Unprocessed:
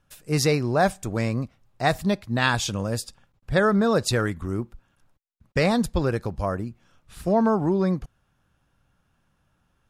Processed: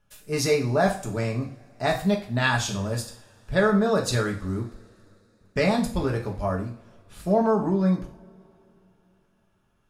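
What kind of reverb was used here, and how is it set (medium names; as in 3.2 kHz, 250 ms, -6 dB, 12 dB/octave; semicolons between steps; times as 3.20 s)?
two-slope reverb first 0.43 s, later 3.5 s, from -28 dB, DRR -0.5 dB; trim -4.5 dB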